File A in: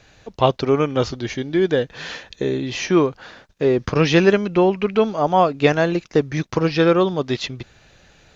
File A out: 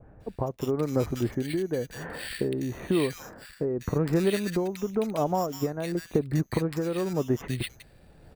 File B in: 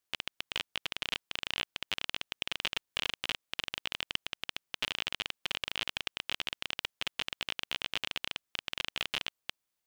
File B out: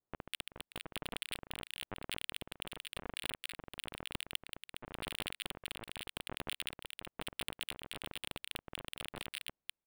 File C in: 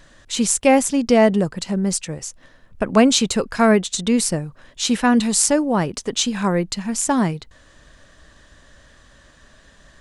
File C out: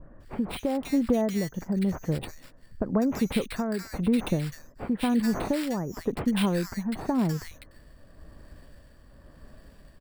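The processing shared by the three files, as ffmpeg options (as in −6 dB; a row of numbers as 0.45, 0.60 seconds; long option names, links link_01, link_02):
-filter_complex "[0:a]lowpass=6500,asplit=2[link_01][link_02];[link_02]adynamicsmooth=sensitivity=7.5:basefreq=3000,volume=2dB[link_03];[link_01][link_03]amix=inputs=2:normalize=0,adynamicequalizer=threshold=0.0251:dfrequency=1900:dqfactor=2.3:tfrequency=1900:tqfactor=2.3:attack=5:release=100:ratio=0.375:range=3:mode=boostabove:tftype=bell,acompressor=threshold=-16dB:ratio=6,acrusher=samples=7:mix=1:aa=0.000001,tremolo=f=0.95:d=0.47,tiltshelf=frequency=770:gain=4.5,acrossover=split=1600[link_04][link_05];[link_05]adelay=200[link_06];[link_04][link_06]amix=inputs=2:normalize=0,volume=-7.5dB"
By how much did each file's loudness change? −10.0, −7.5, −9.5 LU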